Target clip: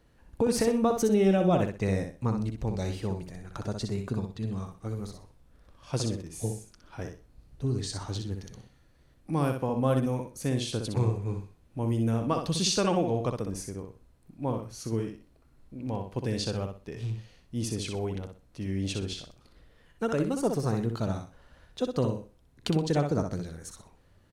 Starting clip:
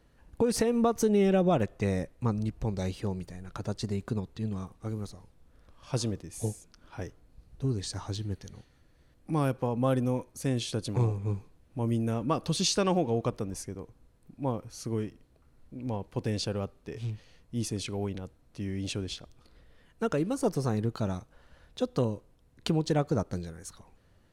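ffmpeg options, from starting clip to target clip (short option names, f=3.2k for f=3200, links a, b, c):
-af "aecho=1:1:62|124|186:0.501|0.125|0.0313"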